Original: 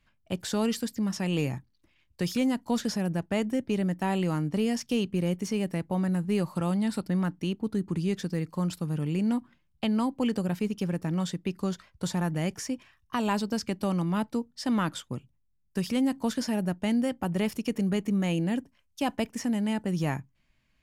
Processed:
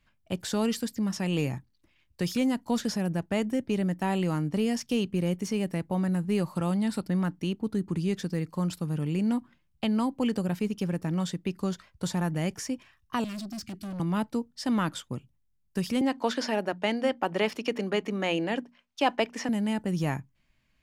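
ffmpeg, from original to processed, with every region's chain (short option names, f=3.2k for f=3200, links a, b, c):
-filter_complex "[0:a]asettb=1/sr,asplit=3[a][b][c];[a]atrim=end=13.244[d];[b]atrim=start=13.24:end=14,asetpts=PTS-STARTPTS,afade=t=in:d=0.004:c=qsin,afade=t=out:st=0.756:d=0.004:c=qsin,asuperstop=centerf=670:order=20:qfactor=0.88,equalizer=f=1.5k:t=o:w=0.88:g=-5,aeval=exprs='(tanh(50.1*val(0)+0.05)-tanh(0.05))/50.1':c=same[e];[c]atrim=start=13.996[f];[d][e]acrossfade=d=0.004:c1=hsin:c2=qsin[g];[g][f]acrossfade=d=0.004:c1=qsin:c2=hsin,asettb=1/sr,asplit=3[h][i][j];[h]atrim=end=16.014[k];[i]atrim=start=16.01:end=19.49,asetpts=PTS-STARTPTS,afade=t=in:d=0.004:c=qsin,afade=t=out:st=3.476:d=0.004:c=qsin,acrossover=split=320 5300:gain=0.112 1 0.141[l][m][n];[l][m][n]amix=inputs=3:normalize=0,bandreject=f=60:t=h:w=6,bandreject=f=120:t=h:w=6,bandreject=f=180:t=h:w=6,bandreject=f=240:t=h:w=6,acontrast=68[o];[j]atrim=start=19.486[p];[k][o]acrossfade=d=0.004:c1=hsin:c2=qsin[q];[q][p]acrossfade=d=0.004:c1=qsin:c2=hsin"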